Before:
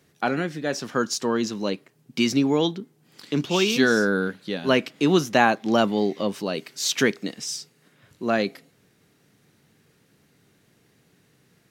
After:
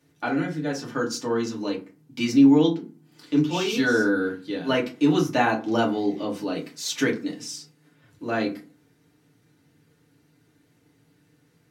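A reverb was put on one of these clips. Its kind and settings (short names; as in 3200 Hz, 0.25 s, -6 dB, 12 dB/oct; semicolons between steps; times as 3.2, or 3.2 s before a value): FDN reverb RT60 0.33 s, low-frequency decay 1.4×, high-frequency decay 0.55×, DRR -3.5 dB; gain -8 dB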